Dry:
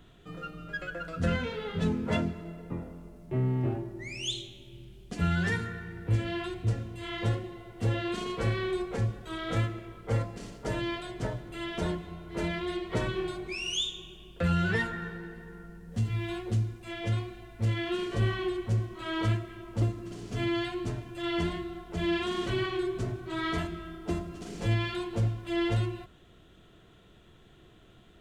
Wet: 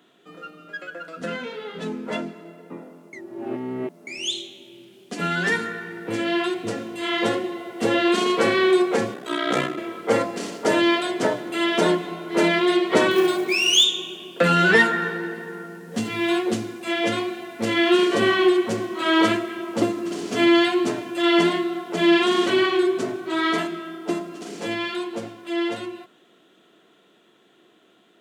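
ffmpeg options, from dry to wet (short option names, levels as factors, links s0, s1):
-filter_complex "[0:a]asplit=3[s0][s1][s2];[s0]afade=t=out:st=9.13:d=0.02[s3];[s1]aeval=exprs='val(0)*sin(2*PI*31*n/s)':c=same,afade=t=in:st=9.13:d=0.02,afade=t=out:st=9.76:d=0.02[s4];[s2]afade=t=in:st=9.76:d=0.02[s5];[s3][s4][s5]amix=inputs=3:normalize=0,asettb=1/sr,asplit=3[s6][s7][s8];[s6]atrim=end=13.114[s9];[s7]atrim=start=13.11:end=13.84,asetpts=PTS-STARTPTS,afade=t=in:d=0.004:c=qsin,afade=t=out:st=0.726:d=0.004:c=qsin,acrusher=bits=6:mode=log:mix=0:aa=0.000001[s10];[s8]atrim=start=13.836[s11];[s9][s10]acrossfade=d=0.004:c1=hsin:c2=qsin[s12];[s12][s11]acrossfade=d=0.004:c1=qsin:c2=hsin,asplit=3[s13][s14][s15];[s13]atrim=end=3.132[s16];[s14]atrim=start=3.128:end=4.072,asetpts=PTS-STARTPTS,areverse[s17];[s15]atrim=start=4.068[s18];[s16][s17]acrossfade=d=0.004:c1=hsin:c2=hsin[s19];[s19][s18]acrossfade=d=0.004:c1=hsin:c2=hsin,highpass=f=230:w=0.5412,highpass=f=230:w=1.3066,dynaudnorm=f=560:g=21:m=4.47,volume=1.26"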